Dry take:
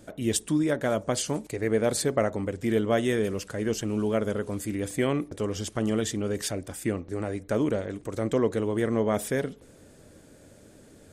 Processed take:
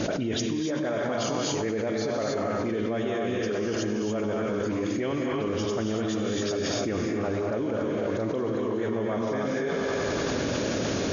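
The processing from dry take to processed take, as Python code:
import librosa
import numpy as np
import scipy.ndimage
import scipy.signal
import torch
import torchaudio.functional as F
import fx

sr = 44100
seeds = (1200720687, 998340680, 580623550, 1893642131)

y = fx.highpass(x, sr, hz=140.0, slope=6)
y = fx.high_shelf(y, sr, hz=4700.0, db=-5.5)
y = fx.notch(y, sr, hz=2000.0, q=25.0)
y = fx.dispersion(y, sr, late='highs', ms=42.0, hz=2600.0)
y = fx.quant_dither(y, sr, seeds[0], bits=10, dither='triangular')
y = fx.brickwall_lowpass(y, sr, high_hz=6900.0)
y = fx.echo_thinned(y, sr, ms=95, feedback_pct=77, hz=200.0, wet_db=-14.5)
y = fx.rev_gated(y, sr, seeds[1], gate_ms=310, shape='rising', drr_db=-0.5)
y = fx.env_flatten(y, sr, amount_pct=100)
y = y * librosa.db_to_amplitude(-8.5)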